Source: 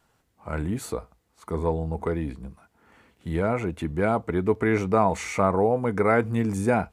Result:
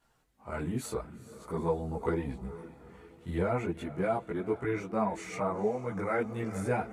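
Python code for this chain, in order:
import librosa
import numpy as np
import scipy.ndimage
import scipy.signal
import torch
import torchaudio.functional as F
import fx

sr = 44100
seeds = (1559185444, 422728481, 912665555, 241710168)

y = fx.echo_diffused(x, sr, ms=450, feedback_pct=45, wet_db=-15)
y = fx.chorus_voices(y, sr, voices=6, hz=0.39, base_ms=19, depth_ms=4.6, mix_pct=60)
y = fx.rider(y, sr, range_db=4, speed_s=0.5)
y = F.gain(torch.from_numpy(y), -5.0).numpy()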